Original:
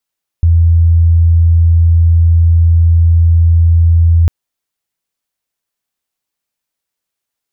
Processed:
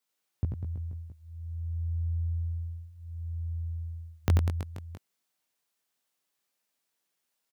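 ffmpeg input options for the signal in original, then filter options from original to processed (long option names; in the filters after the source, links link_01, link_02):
-f lavfi -i "aevalsrc='0.596*sin(2*PI*83.6*t)':duration=3.85:sample_rate=44100"
-af "highpass=150,flanger=delay=16.5:depth=4.4:speed=0.33,aecho=1:1:90|198|327.6|483.1|669.7:0.631|0.398|0.251|0.158|0.1"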